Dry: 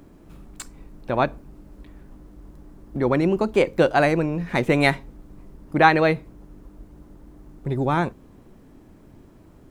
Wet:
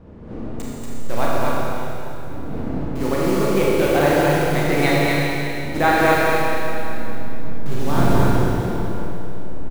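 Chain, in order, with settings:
hold until the input has moved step −26.5 dBFS
wind on the microphone 290 Hz −31 dBFS
on a send: single-tap delay 236 ms −3 dB
on the sum: four-comb reverb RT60 3 s, combs from 27 ms, DRR −5.5 dB
level −4.5 dB

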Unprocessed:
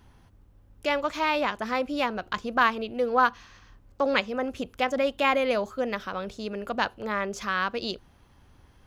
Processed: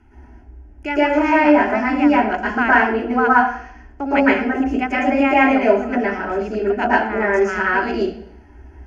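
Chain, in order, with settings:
low-pass filter 8,600 Hz 12 dB per octave
phaser with its sweep stopped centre 770 Hz, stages 8
convolution reverb RT60 0.60 s, pre-delay 108 ms, DRR −7.5 dB
level −2 dB

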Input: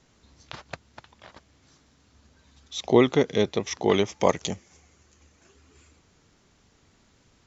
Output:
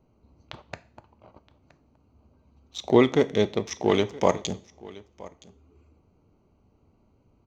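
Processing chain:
adaptive Wiener filter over 25 samples
single-tap delay 970 ms −21 dB
coupled-rooms reverb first 0.41 s, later 1.6 s, from −28 dB, DRR 12 dB

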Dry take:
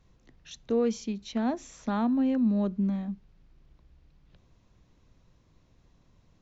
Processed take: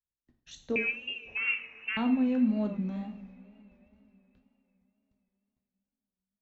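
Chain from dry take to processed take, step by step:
noise gate −54 dBFS, range −38 dB
0:00.76–0:01.97: voice inversion scrambler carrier 2,900 Hz
coupled-rooms reverb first 0.48 s, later 4 s, from −21 dB, DRR 3.5 dB
tape wow and flutter 74 cents
level −4 dB

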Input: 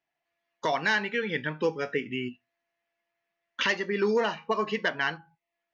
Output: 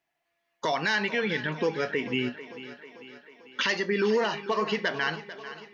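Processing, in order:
dynamic equaliser 4,800 Hz, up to +6 dB, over −47 dBFS, Q 1.7
brickwall limiter −21.5 dBFS, peak gain reduction 7 dB
feedback echo with a high-pass in the loop 444 ms, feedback 61%, high-pass 170 Hz, level −14 dB
level +4 dB

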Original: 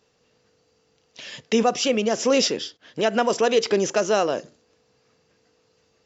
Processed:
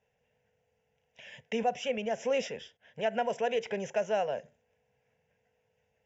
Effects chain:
phaser with its sweep stopped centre 1,200 Hz, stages 6
0:01.66–0:02.36: floating-point word with a short mantissa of 6 bits
high-frequency loss of the air 96 metres
level −6.5 dB

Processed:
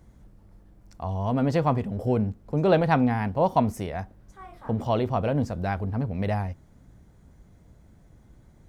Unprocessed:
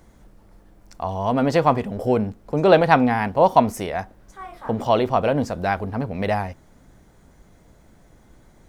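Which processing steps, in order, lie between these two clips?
parametric band 87 Hz +11 dB 2.9 octaves
level −8.5 dB

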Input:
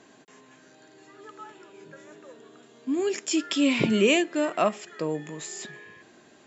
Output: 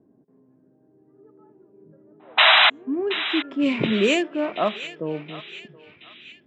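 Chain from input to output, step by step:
adaptive Wiener filter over 9 samples
sound drawn into the spectrogram noise, 0:02.37–0:02.70, 600–4,000 Hz −15 dBFS
echo ahead of the sound 176 ms −21 dB
low-pass that shuts in the quiet parts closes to 310 Hz, open at −14 dBFS
on a send: feedback echo with a band-pass in the loop 725 ms, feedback 57%, band-pass 2,900 Hz, level −11 dB
on the sum: level +1 dB

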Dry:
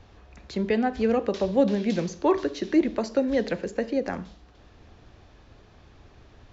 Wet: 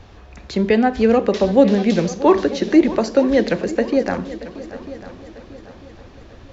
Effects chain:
echo machine with several playback heads 315 ms, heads second and third, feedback 45%, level −17 dB
level +8.5 dB

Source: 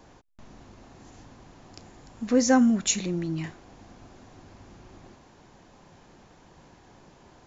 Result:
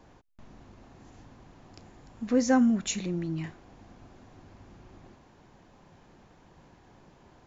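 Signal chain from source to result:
bass and treble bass +2 dB, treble −5 dB
level −3.5 dB

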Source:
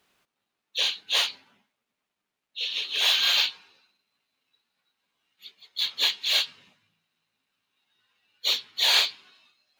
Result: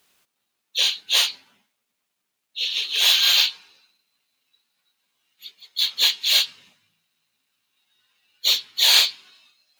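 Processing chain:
high-shelf EQ 4,100 Hz +12 dB

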